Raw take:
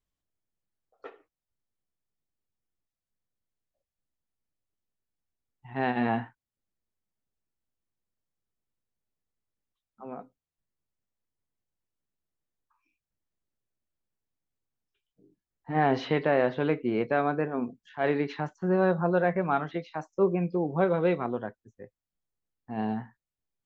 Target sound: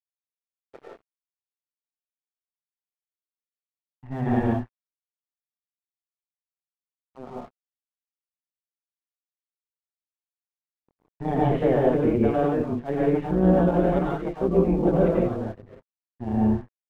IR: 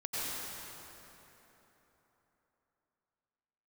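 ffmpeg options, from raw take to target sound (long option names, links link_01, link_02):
-filter_complex "[0:a]aemphasis=mode=reproduction:type=riaa,bandreject=frequency=50:width_type=h:width=6,bandreject=frequency=100:width_type=h:width=6,bandreject=frequency=150:width_type=h:width=6,bandreject=frequency=200:width_type=h:width=6,adynamicequalizer=threshold=0.0112:dfrequency=140:dqfactor=4.6:tfrequency=140:tqfactor=4.6:attack=5:release=100:ratio=0.375:range=2:mode=cutabove:tftype=bell,acrossover=split=300|760[link_01][link_02][link_03];[link_03]asoftclip=type=tanh:threshold=-33dB[link_04];[link_01][link_02][link_04]amix=inputs=3:normalize=0,aresample=8000,aresample=44100,tremolo=f=130:d=0.824,atempo=1.4[link_05];[1:a]atrim=start_sample=2205,afade=type=out:start_time=0.24:duration=0.01,atrim=end_sample=11025[link_06];[link_05][link_06]afir=irnorm=-1:irlink=0,aeval=exprs='sgn(val(0))*max(abs(val(0))-0.00178,0)':channel_layout=same,volume=4dB"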